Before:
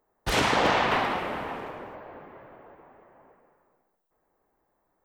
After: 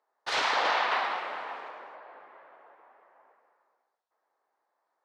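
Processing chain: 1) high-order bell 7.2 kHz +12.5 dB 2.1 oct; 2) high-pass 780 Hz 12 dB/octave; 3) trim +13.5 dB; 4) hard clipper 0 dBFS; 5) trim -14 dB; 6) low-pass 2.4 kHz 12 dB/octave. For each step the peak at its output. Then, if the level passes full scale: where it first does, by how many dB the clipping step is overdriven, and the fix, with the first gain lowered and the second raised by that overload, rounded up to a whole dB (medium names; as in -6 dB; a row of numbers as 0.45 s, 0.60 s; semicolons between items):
-7.5 dBFS, -8.0 dBFS, +5.5 dBFS, 0.0 dBFS, -14.0 dBFS, -15.0 dBFS; step 3, 5.5 dB; step 3 +7.5 dB, step 5 -8 dB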